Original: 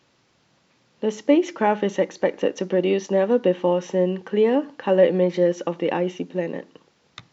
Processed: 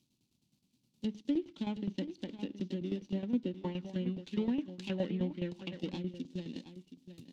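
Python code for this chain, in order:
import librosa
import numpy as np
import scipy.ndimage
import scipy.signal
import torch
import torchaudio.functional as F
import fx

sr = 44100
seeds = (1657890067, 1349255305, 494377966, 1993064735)

y = scipy.ndimage.median_filter(x, 25, mode='constant')
y = fx.notch(y, sr, hz=1200.0, q=13.0)
y = fx.env_lowpass_down(y, sr, base_hz=1600.0, full_db=-18.0)
y = fx.curve_eq(y, sr, hz=(140.0, 250.0, 500.0, 1000.0, 1600.0, 3500.0, 5500.0), db=(0, 4, -18, -14, -13, 12, 14))
y = fx.tremolo_shape(y, sr, shape='saw_down', hz=9.6, depth_pct=75)
y = y + 10.0 ** (-12.0 / 20.0) * np.pad(y, (int(721 * sr / 1000.0), 0))[:len(y)]
y = fx.bell_lfo(y, sr, hz=3.6, low_hz=690.0, high_hz=2700.0, db=12, at=(3.61, 5.92))
y = y * librosa.db_to_amplitude(-7.0)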